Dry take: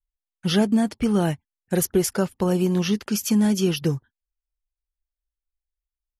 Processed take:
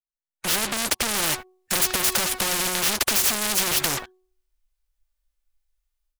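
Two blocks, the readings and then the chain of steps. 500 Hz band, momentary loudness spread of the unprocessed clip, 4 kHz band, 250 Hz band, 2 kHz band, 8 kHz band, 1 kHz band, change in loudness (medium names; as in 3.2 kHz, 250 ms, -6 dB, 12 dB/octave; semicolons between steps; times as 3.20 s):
-8.0 dB, 7 LU, +8.0 dB, -14.5 dB, +9.0 dB, +9.0 dB, +4.5 dB, +1.0 dB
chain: fade-in on the opening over 0.90 s; de-hum 370.3 Hz, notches 3; harmonic-percussive split percussive -12 dB; peaking EQ 110 Hz -14 dB 2.3 oct; compression 5:1, threshold -31 dBFS, peak gain reduction 8.5 dB; comb 3.4 ms, depth 41%; level rider gain up to 13 dB; waveshaping leveller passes 5; spectrum-flattening compressor 4:1; trim +3 dB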